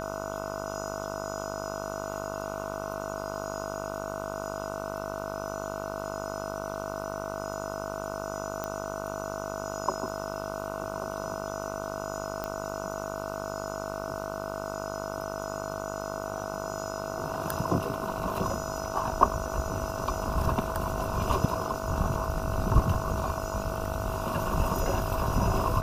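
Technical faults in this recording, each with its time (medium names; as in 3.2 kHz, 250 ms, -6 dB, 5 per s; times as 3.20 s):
buzz 50 Hz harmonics 30 -37 dBFS
whine 650 Hz -38 dBFS
8.64 s: pop -18 dBFS
12.44 s: pop -18 dBFS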